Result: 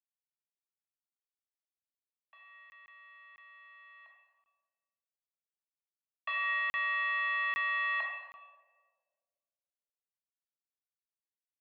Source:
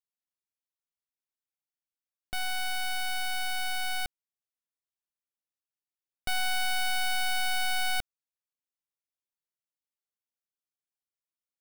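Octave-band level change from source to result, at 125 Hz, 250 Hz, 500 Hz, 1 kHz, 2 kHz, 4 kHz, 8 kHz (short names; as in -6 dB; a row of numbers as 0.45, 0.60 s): under -25 dB, under -20 dB, -8.0 dB, -4.0 dB, -0.5 dB, -15.0 dB, under -35 dB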